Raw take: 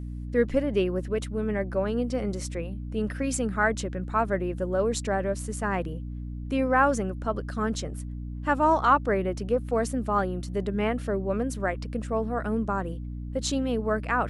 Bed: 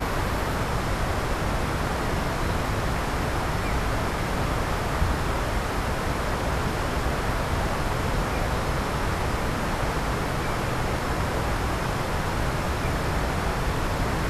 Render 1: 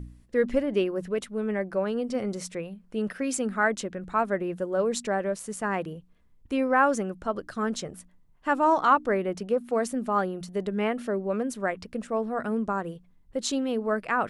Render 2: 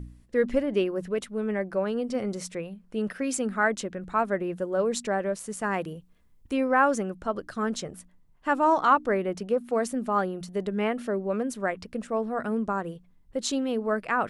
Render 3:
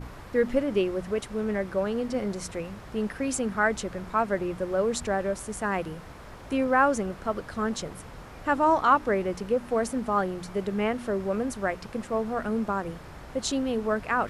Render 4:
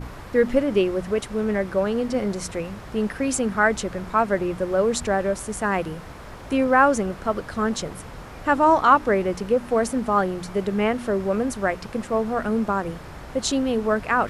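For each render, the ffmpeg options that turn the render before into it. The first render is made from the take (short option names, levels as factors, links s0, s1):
-af "bandreject=f=60:t=h:w=4,bandreject=f=120:t=h:w=4,bandreject=f=180:t=h:w=4,bandreject=f=240:t=h:w=4,bandreject=f=300:t=h:w=4"
-filter_complex "[0:a]asettb=1/sr,asplit=3[s0][s1][s2];[s0]atrim=end=5.614[s3];[s1]atrim=start=5.61:end=6.53,asetpts=PTS-STARTPTS,afade=t=in:d=0.004:c=qsin,afade=t=out:st=0.916:d=0.004:c=qsin,highshelf=f=5200:g=7[s4];[s2]atrim=start=6.526[s5];[s3][s4]acrossfade=d=0.004:c1=hsin:c2=qsin[s6];[s6][s5]acrossfade=d=0.004:c1=qsin:c2=hsin"
-filter_complex "[1:a]volume=0.119[s0];[0:a][s0]amix=inputs=2:normalize=0"
-af "volume=1.78"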